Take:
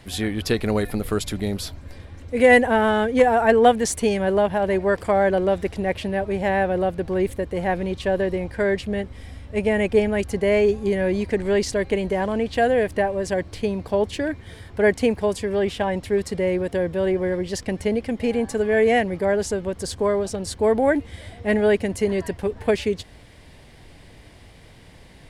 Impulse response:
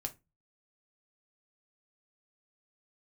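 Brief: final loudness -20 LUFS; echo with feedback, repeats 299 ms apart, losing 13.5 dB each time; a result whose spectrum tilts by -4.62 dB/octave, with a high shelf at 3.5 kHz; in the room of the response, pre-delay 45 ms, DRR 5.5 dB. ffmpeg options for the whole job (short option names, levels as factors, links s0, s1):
-filter_complex "[0:a]highshelf=f=3500:g=5.5,aecho=1:1:299|598:0.211|0.0444,asplit=2[s0][s1];[1:a]atrim=start_sample=2205,adelay=45[s2];[s1][s2]afir=irnorm=-1:irlink=0,volume=0.596[s3];[s0][s3]amix=inputs=2:normalize=0,volume=1.06"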